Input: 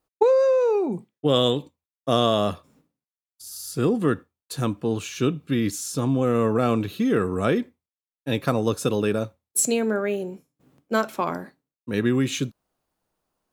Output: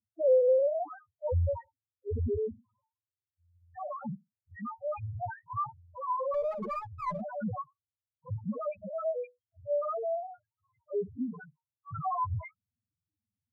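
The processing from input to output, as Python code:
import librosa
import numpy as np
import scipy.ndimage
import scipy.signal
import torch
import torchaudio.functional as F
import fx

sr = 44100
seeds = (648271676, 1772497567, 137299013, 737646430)

y = fx.octave_mirror(x, sr, pivot_hz=520.0)
y = fx.spec_topn(y, sr, count=1)
y = fx.running_max(y, sr, window=5, at=(6.34, 7.22))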